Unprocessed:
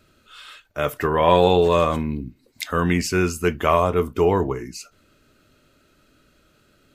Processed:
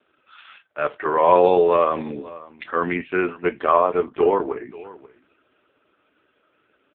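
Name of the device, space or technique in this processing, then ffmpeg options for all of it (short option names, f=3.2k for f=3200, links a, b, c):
satellite phone: -af "highpass=350,lowpass=3.2k,aecho=1:1:537:0.106,volume=3dB" -ar 8000 -c:a libopencore_amrnb -b:a 4750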